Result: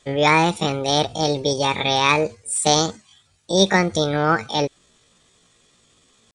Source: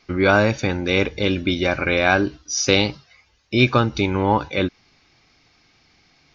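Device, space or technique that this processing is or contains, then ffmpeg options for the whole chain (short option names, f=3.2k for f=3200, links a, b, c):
chipmunk voice: -af "asetrate=68011,aresample=44100,atempo=0.64842"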